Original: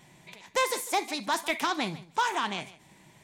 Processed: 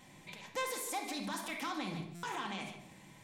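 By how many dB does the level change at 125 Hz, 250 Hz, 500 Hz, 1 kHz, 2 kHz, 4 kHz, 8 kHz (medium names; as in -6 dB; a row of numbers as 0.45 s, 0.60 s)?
-2.0 dB, -5.0 dB, -10.5 dB, -11.5 dB, -10.5 dB, -10.0 dB, -7.0 dB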